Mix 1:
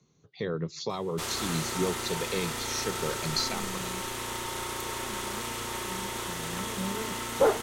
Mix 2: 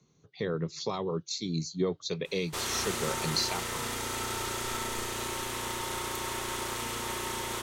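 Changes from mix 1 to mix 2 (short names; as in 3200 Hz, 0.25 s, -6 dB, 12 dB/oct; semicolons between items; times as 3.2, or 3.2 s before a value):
first sound: entry +1.35 s; second sound: muted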